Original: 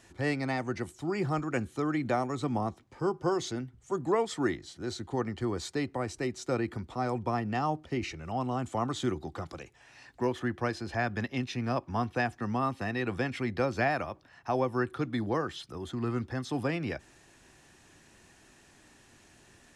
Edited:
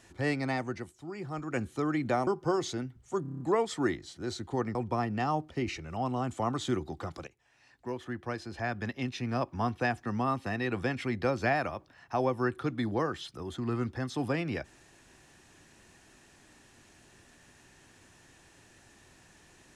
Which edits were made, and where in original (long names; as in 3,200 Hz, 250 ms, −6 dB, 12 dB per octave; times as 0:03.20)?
0:00.57–0:01.65: duck −9 dB, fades 0.36 s
0:02.27–0:03.05: remove
0:04.00: stutter 0.03 s, 7 plays
0:05.35–0:07.10: remove
0:09.62–0:11.86: fade in, from −13.5 dB